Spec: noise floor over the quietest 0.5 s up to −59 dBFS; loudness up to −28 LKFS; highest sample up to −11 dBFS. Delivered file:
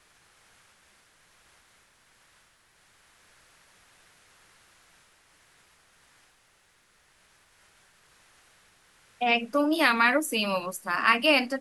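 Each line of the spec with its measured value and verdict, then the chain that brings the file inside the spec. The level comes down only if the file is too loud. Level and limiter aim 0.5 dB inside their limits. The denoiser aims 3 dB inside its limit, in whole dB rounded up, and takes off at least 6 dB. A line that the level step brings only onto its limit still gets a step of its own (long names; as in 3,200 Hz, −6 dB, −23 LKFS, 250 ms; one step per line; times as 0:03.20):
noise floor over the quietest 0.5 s −64 dBFS: in spec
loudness −24.0 LKFS: out of spec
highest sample −6.5 dBFS: out of spec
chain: level −4.5 dB
brickwall limiter −11.5 dBFS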